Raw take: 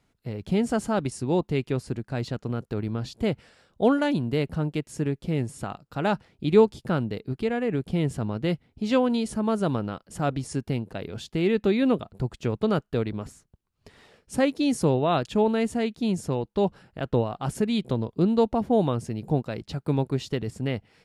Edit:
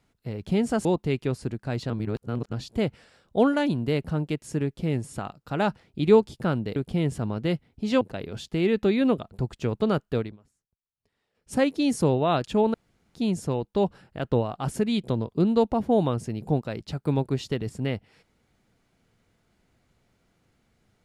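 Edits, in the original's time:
0:00.85–0:01.30: remove
0:02.35–0:02.98: reverse
0:07.21–0:07.75: remove
0:09.00–0:10.82: remove
0:12.98–0:14.35: duck −23.5 dB, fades 0.20 s
0:15.55–0:15.96: fill with room tone

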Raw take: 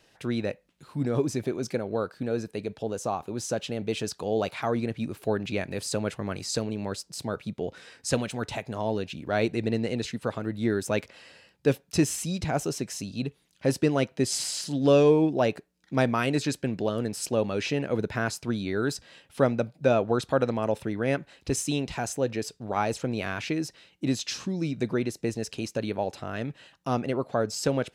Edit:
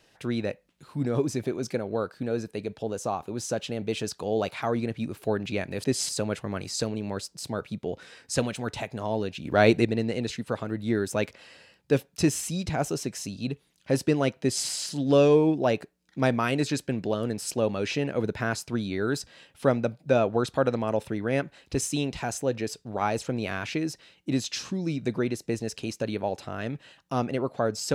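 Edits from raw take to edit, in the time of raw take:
0:09.20–0:09.60: clip gain +6.5 dB
0:14.16–0:14.41: duplicate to 0:05.84

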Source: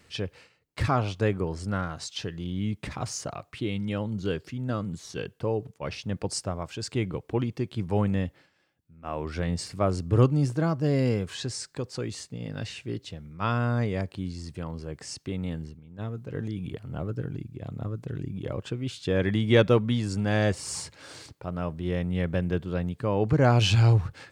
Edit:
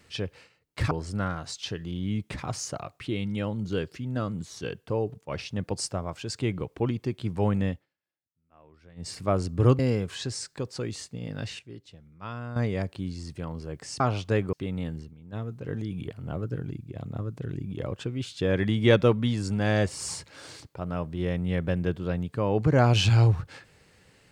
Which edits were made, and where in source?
0:00.91–0:01.44: move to 0:15.19
0:08.22–0:09.66: duck −23.5 dB, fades 0.17 s
0:10.32–0:10.98: remove
0:12.78–0:13.75: clip gain −10.5 dB

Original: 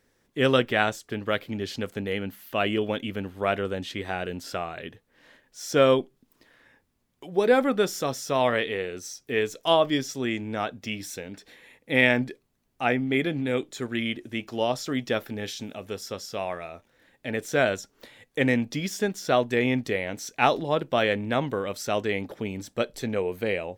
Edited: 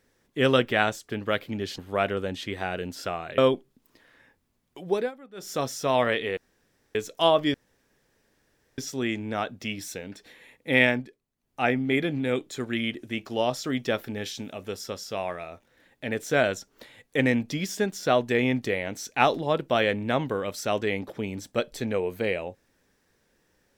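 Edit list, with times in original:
0:01.78–0:03.26: remove
0:04.86–0:05.84: remove
0:07.34–0:08.05: duck −23.5 dB, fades 0.24 s
0:08.83–0:09.41: fill with room tone
0:10.00: splice in room tone 1.24 s
0:12.06–0:12.83: duck −11 dB, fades 0.25 s

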